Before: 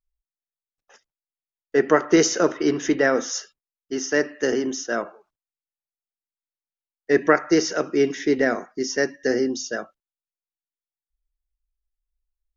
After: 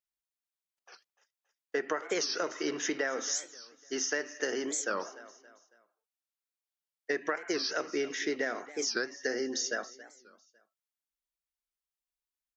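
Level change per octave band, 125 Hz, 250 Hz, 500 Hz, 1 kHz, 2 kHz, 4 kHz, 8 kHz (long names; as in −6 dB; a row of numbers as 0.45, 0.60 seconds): −21.5 dB, −15.5 dB, −13.0 dB, −11.0 dB, −8.5 dB, −4.0 dB, can't be measured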